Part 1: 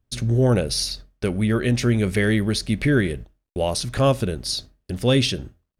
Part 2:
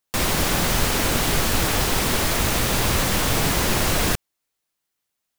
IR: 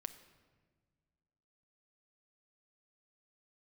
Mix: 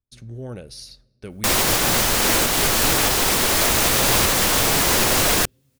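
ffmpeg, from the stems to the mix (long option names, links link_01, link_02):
-filter_complex "[0:a]volume=-17.5dB,asplit=2[link_01][link_02];[link_02]volume=-10dB[link_03];[1:a]bass=frequency=250:gain=-7,treble=frequency=4000:gain=3,adelay=1300,volume=3dB[link_04];[2:a]atrim=start_sample=2205[link_05];[link_03][link_05]afir=irnorm=-1:irlink=0[link_06];[link_01][link_04][link_06]amix=inputs=3:normalize=0,dynaudnorm=framelen=220:gausssize=9:maxgain=11.5dB,alimiter=limit=-7dB:level=0:latency=1:release=455"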